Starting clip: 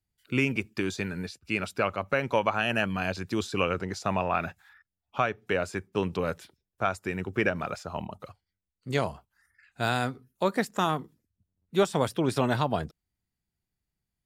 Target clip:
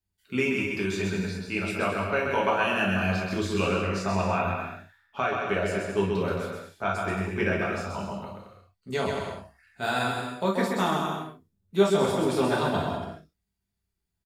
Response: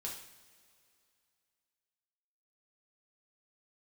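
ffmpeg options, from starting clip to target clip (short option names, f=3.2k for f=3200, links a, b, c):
-filter_complex "[0:a]aecho=1:1:130|221|284.7|329.3|360.5:0.631|0.398|0.251|0.158|0.1[a];[1:a]atrim=start_sample=2205,atrim=end_sample=3087[b];[a][b]afir=irnorm=-1:irlink=0,volume=1.5dB"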